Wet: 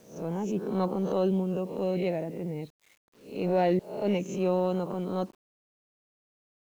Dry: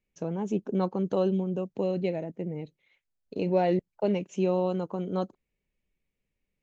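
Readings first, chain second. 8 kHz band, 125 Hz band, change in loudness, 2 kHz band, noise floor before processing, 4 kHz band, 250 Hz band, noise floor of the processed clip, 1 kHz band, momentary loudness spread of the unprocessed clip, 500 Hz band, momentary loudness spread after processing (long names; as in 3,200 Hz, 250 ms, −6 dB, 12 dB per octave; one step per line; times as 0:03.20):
can't be measured, 0.0 dB, 0.0 dB, +1.5 dB, −84 dBFS, +1.5 dB, −0.5 dB, below −85 dBFS, +1.0 dB, 10 LU, 0.0 dB, 10 LU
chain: peak hold with a rise ahead of every peak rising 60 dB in 0.44 s
transient designer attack −7 dB, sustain +2 dB
bit-depth reduction 10 bits, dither none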